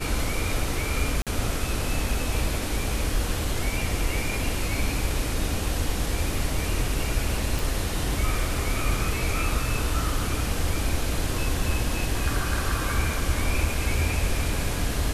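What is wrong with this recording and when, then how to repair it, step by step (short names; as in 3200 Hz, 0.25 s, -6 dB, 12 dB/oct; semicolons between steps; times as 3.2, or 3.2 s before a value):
1.22–1.27 gap 47 ms
7.59 pop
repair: de-click; interpolate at 1.22, 47 ms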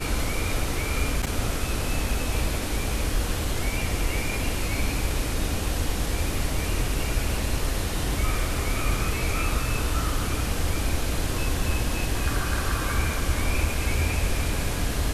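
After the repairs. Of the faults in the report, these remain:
none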